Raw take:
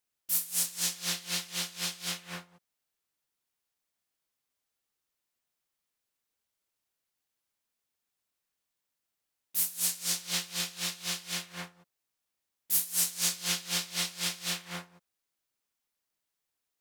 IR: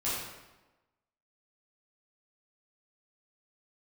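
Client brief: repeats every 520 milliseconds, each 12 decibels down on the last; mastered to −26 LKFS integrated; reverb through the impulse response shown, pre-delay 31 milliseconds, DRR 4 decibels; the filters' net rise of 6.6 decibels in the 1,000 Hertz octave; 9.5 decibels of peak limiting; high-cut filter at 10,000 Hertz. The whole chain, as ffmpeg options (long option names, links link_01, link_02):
-filter_complex "[0:a]lowpass=10000,equalizer=frequency=1000:width_type=o:gain=8.5,alimiter=limit=-24dB:level=0:latency=1,aecho=1:1:520|1040|1560:0.251|0.0628|0.0157,asplit=2[link_01][link_02];[1:a]atrim=start_sample=2205,adelay=31[link_03];[link_02][link_03]afir=irnorm=-1:irlink=0,volume=-11dB[link_04];[link_01][link_04]amix=inputs=2:normalize=0,volume=8dB"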